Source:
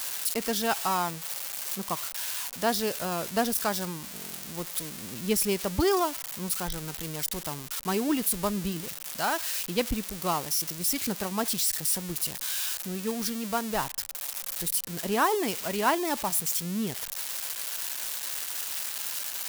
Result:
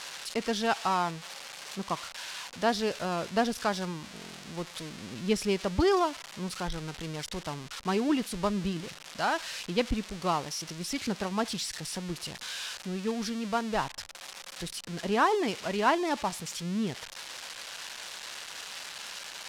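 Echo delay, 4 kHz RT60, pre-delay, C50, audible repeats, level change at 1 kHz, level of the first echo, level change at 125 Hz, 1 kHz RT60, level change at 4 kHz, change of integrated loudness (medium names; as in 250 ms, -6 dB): no echo, no reverb, no reverb, no reverb, no echo, 0.0 dB, no echo, 0.0 dB, no reverb, -2.0 dB, -3.0 dB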